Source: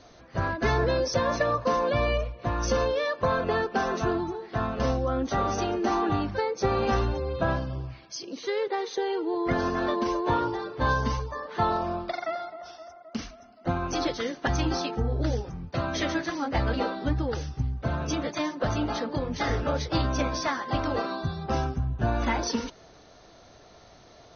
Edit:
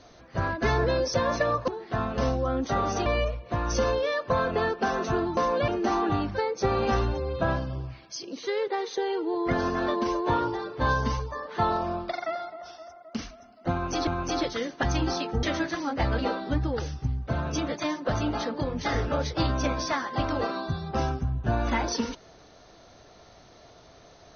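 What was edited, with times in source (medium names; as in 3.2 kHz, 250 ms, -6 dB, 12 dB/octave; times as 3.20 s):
1.68–1.99 s: swap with 4.30–5.68 s
13.71–14.07 s: loop, 2 plays
15.07–15.98 s: delete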